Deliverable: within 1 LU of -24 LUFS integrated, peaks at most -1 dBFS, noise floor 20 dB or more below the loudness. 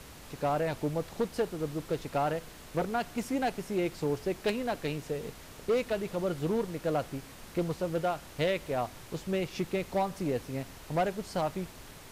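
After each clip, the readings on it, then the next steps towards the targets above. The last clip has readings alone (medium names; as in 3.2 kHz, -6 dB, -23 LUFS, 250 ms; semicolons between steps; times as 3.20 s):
clipped samples 1.0%; clipping level -22.5 dBFS; noise floor -49 dBFS; noise floor target -53 dBFS; loudness -33.0 LUFS; peak level -22.5 dBFS; loudness target -24.0 LUFS
-> clip repair -22.5 dBFS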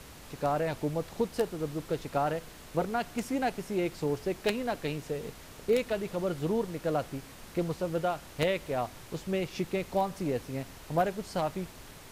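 clipped samples 0.0%; noise floor -49 dBFS; noise floor target -53 dBFS
-> noise print and reduce 6 dB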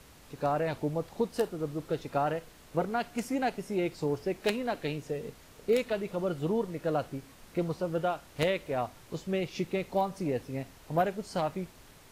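noise floor -55 dBFS; loudness -32.5 LUFS; peak level -13.5 dBFS; loudness target -24.0 LUFS
-> trim +8.5 dB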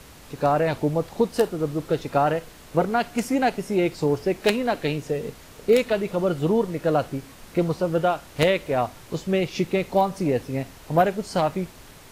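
loudness -24.0 LUFS; peak level -5.0 dBFS; noise floor -46 dBFS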